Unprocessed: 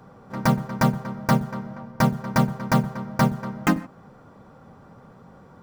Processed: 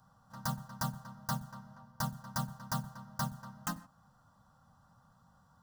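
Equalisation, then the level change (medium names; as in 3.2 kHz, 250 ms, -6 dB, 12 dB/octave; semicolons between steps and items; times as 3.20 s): amplifier tone stack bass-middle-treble 5-5-5; static phaser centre 940 Hz, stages 4; +1.5 dB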